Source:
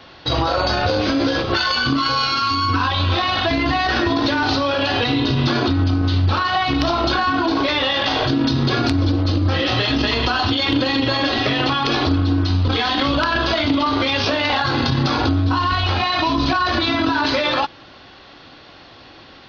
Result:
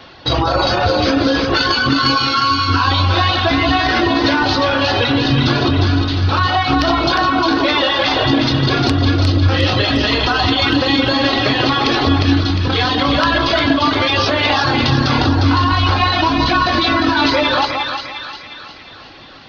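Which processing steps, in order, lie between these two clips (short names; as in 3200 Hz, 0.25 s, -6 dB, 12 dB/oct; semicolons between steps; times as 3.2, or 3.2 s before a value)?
reverb removal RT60 1 s; on a send: split-band echo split 1200 Hz, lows 0.172 s, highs 0.355 s, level -4 dB; on the sum: gain +4 dB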